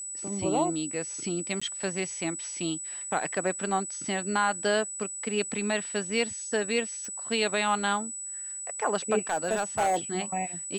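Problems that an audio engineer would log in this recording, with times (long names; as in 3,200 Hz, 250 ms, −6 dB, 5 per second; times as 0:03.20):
whistle 7,900 Hz −35 dBFS
0:01.60–0:01.61: drop-out 15 ms
0:07.05: click −27 dBFS
0:09.30–0:09.97: clipping −21 dBFS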